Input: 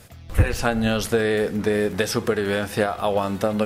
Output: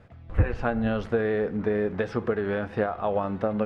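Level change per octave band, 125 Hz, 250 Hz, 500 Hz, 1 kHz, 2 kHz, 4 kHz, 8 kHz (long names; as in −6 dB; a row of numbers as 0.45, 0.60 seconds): −4.0 dB, −4.0 dB, −4.0 dB, −4.5 dB, −7.0 dB, −17.0 dB, below −25 dB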